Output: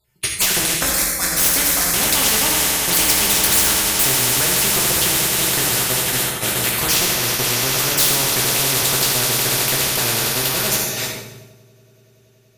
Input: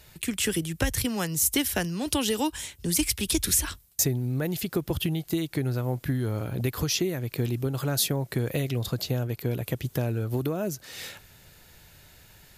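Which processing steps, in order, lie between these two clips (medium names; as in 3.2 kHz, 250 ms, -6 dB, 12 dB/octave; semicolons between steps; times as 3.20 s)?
random holes in the spectrogram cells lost 32%; de-hum 47.4 Hz, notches 38; on a send: echo with a slow build-up 95 ms, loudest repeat 8, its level -16 dB; on the sum: gate -32 dBFS, range -41 dB; 0.74–1.94 s: static phaser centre 580 Hz, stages 8; in parallel at -3.5 dB: one-sided clip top -32.5 dBFS; on the sum: reverberation RT60 0.80 s, pre-delay 4 ms, DRR -2.5 dB; spectrum-flattening compressor 4:1; trim +4 dB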